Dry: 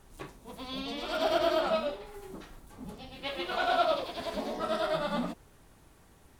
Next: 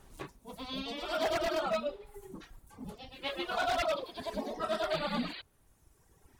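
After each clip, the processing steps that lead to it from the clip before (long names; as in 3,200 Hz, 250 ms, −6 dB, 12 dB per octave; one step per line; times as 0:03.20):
wave folding −23 dBFS
sound drawn into the spectrogram noise, 0:04.90–0:05.42, 270–4,800 Hz −40 dBFS
reverb reduction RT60 1.6 s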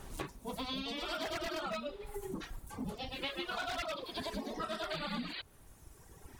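dynamic equaliser 630 Hz, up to −7 dB, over −46 dBFS, Q 1.1
downward compressor 6 to 1, threshold −45 dBFS, peak gain reduction 14 dB
level +8.5 dB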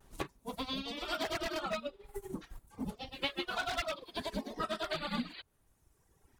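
pitch vibrato 0.39 Hz 19 cents
expander for the loud parts 2.5 to 1, over −48 dBFS
level +5.5 dB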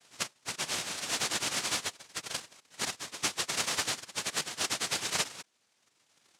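cochlear-implant simulation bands 1
level +4 dB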